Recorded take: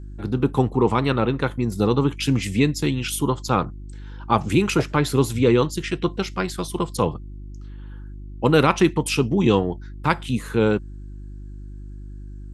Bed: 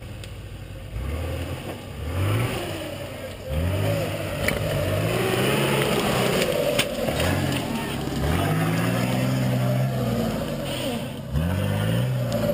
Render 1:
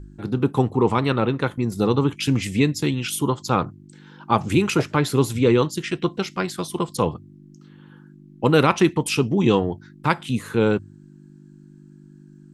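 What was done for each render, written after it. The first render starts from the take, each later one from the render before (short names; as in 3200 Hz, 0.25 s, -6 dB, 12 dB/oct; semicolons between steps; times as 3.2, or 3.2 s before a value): de-hum 50 Hz, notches 2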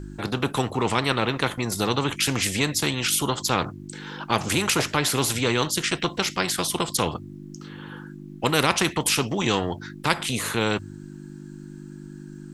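spectral compressor 2:1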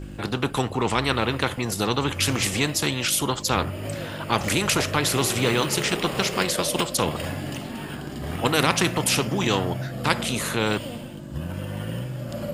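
add bed -8 dB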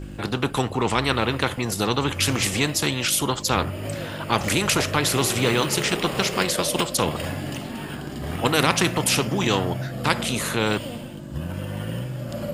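gain +1 dB; limiter -2 dBFS, peak gain reduction 1 dB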